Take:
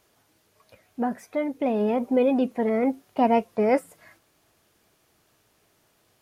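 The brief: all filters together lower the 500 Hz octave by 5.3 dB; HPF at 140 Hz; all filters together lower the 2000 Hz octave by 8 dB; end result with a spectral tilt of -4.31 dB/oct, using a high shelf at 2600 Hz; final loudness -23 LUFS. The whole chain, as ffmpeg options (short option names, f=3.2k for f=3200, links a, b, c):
-af "highpass=140,equalizer=f=500:t=o:g=-5.5,equalizer=f=2k:t=o:g=-5,highshelf=f=2.6k:g=-9,volume=5dB"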